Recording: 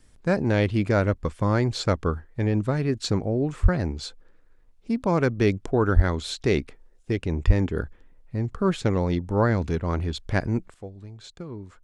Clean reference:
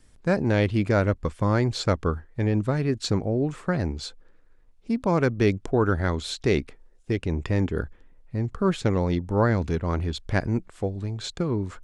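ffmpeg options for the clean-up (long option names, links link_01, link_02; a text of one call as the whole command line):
ffmpeg -i in.wav -filter_complex "[0:a]asplit=3[link_01][link_02][link_03];[link_01]afade=type=out:start_time=3.62:duration=0.02[link_04];[link_02]highpass=frequency=140:width=0.5412,highpass=frequency=140:width=1.3066,afade=type=in:start_time=3.62:duration=0.02,afade=type=out:start_time=3.74:duration=0.02[link_05];[link_03]afade=type=in:start_time=3.74:duration=0.02[link_06];[link_04][link_05][link_06]amix=inputs=3:normalize=0,asplit=3[link_07][link_08][link_09];[link_07]afade=type=out:start_time=5.95:duration=0.02[link_10];[link_08]highpass=frequency=140:width=0.5412,highpass=frequency=140:width=1.3066,afade=type=in:start_time=5.95:duration=0.02,afade=type=out:start_time=6.07:duration=0.02[link_11];[link_09]afade=type=in:start_time=6.07:duration=0.02[link_12];[link_10][link_11][link_12]amix=inputs=3:normalize=0,asplit=3[link_13][link_14][link_15];[link_13]afade=type=out:start_time=7.46:duration=0.02[link_16];[link_14]highpass=frequency=140:width=0.5412,highpass=frequency=140:width=1.3066,afade=type=in:start_time=7.46:duration=0.02,afade=type=out:start_time=7.58:duration=0.02[link_17];[link_15]afade=type=in:start_time=7.58:duration=0.02[link_18];[link_16][link_17][link_18]amix=inputs=3:normalize=0,asetnsamples=nb_out_samples=441:pad=0,asendcmd='10.74 volume volume 11dB',volume=0dB" out.wav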